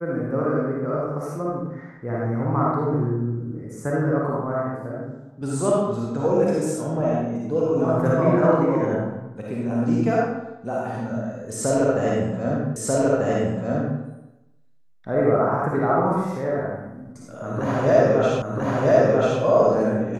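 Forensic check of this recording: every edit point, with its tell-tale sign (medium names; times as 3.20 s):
12.76 s: repeat of the last 1.24 s
18.42 s: repeat of the last 0.99 s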